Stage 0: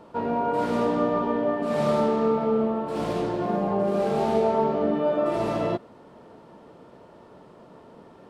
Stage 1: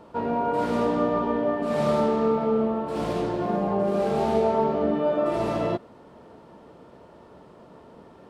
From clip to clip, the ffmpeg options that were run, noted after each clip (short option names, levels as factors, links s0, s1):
-af "equalizer=f=67:t=o:w=0.47:g=8"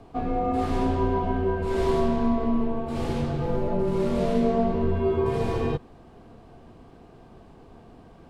-af "afreqshift=-210"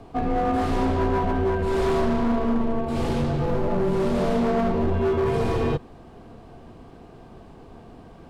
-af "asoftclip=type=hard:threshold=0.075,volume=1.58"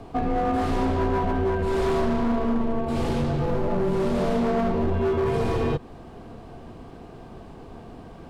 -af "acompressor=threshold=0.0447:ratio=2,volume=1.41"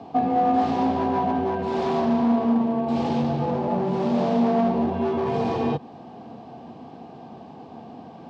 -af "highpass=f=110:w=0.5412,highpass=f=110:w=1.3066,equalizer=f=110:t=q:w=4:g=-5,equalizer=f=240:t=q:w=4:g=5,equalizer=f=390:t=q:w=4:g=-3,equalizer=f=790:t=q:w=4:g=9,equalizer=f=1400:t=q:w=4:g=-6,equalizer=f=2000:t=q:w=4:g=-4,lowpass=f=5900:w=0.5412,lowpass=f=5900:w=1.3066"